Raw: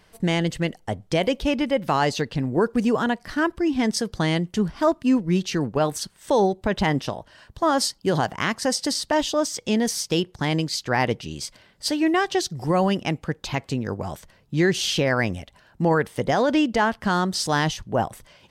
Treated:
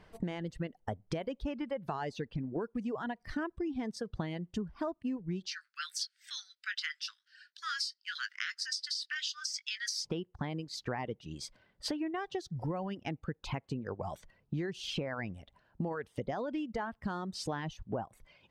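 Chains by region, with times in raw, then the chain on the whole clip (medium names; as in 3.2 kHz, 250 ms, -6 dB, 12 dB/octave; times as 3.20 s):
5.46–10.05 s: steep high-pass 1.4 kHz 72 dB/octave + peaking EQ 4.9 kHz +12.5 dB 0.8 oct + doubling 20 ms -9 dB
whole clip: low-pass 1.6 kHz 6 dB/octave; reverb removal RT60 1.3 s; compression 12:1, threshold -33 dBFS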